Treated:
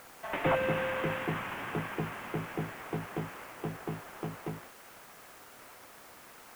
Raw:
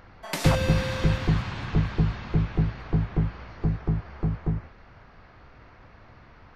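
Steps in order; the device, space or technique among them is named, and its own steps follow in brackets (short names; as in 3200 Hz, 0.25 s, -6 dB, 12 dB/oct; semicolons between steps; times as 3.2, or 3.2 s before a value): army field radio (BPF 330–3100 Hz; CVSD 16 kbps; white noise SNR 20 dB)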